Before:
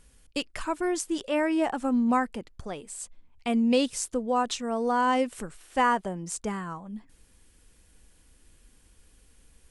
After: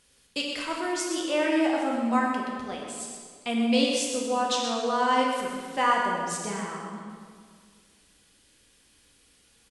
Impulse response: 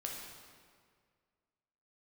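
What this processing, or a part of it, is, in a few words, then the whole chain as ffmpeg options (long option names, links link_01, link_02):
PA in a hall: -filter_complex "[0:a]highpass=frequency=200:poles=1,equalizer=frequency=3900:width_type=o:width=1.5:gain=7.5,aecho=1:1:125:0.398[link_01];[1:a]atrim=start_sample=2205[link_02];[link_01][link_02]afir=irnorm=-1:irlink=0"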